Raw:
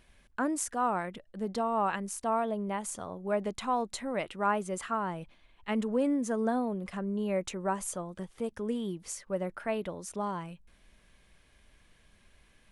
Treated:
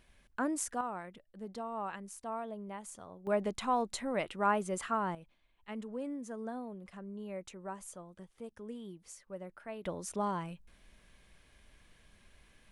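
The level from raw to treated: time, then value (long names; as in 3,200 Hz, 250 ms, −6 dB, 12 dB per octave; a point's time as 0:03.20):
−3 dB
from 0:00.81 −10 dB
from 0:03.27 −1 dB
from 0:05.15 −11.5 dB
from 0:09.85 0 dB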